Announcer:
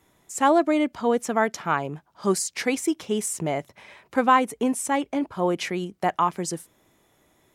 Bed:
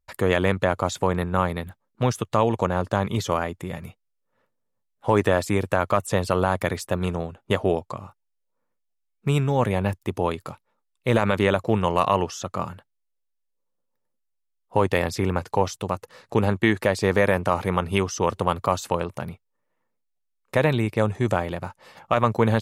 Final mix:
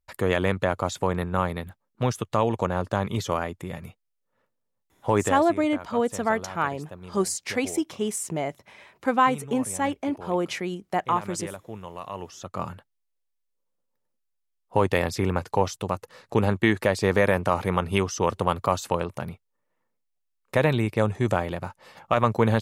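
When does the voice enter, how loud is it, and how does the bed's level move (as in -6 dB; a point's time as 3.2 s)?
4.90 s, -2.0 dB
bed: 5.21 s -2.5 dB
5.53 s -17 dB
12.05 s -17 dB
12.68 s -1 dB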